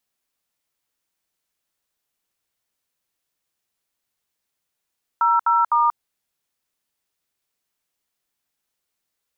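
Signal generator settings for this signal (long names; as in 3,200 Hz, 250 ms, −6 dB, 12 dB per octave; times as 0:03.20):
touch tones "00*", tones 185 ms, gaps 68 ms, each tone −17 dBFS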